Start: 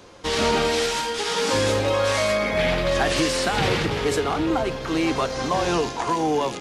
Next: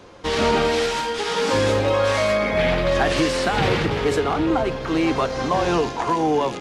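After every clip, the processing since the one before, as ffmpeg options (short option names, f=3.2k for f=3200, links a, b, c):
-af "highshelf=f=4.4k:g=-9,volume=2.5dB"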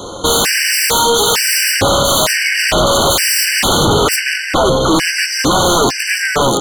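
-af "bass=f=250:g=-2,treble=f=4k:g=13,aeval=exprs='0.447*sin(PI/2*5.01*val(0)/0.447)':c=same,afftfilt=real='re*gt(sin(2*PI*1.1*pts/sr)*(1-2*mod(floor(b*sr/1024/1500),2)),0)':imag='im*gt(sin(2*PI*1.1*pts/sr)*(1-2*mod(floor(b*sr/1024/1500),2)),0)':win_size=1024:overlap=0.75"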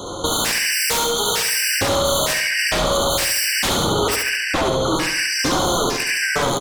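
-filter_complex "[0:a]acompressor=threshold=-15dB:ratio=6,asplit=2[a][b];[b]aecho=0:1:70|140|210|280|350|420:0.708|0.304|0.131|0.0563|0.0242|0.0104[c];[a][c]amix=inputs=2:normalize=0,volume=-3.5dB"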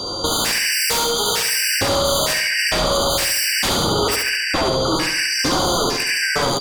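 -af "aeval=exprs='val(0)+0.0501*sin(2*PI*4700*n/s)':c=same"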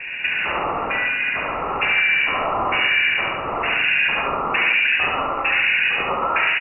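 -filter_complex "[0:a]adynamicsmooth=sensitivity=6.5:basefreq=650,asplit=2[a][b];[b]aecho=0:1:120:0.531[c];[a][c]amix=inputs=2:normalize=0,lowpass=f=2.5k:t=q:w=0.5098,lowpass=f=2.5k:t=q:w=0.6013,lowpass=f=2.5k:t=q:w=0.9,lowpass=f=2.5k:t=q:w=2.563,afreqshift=-2900"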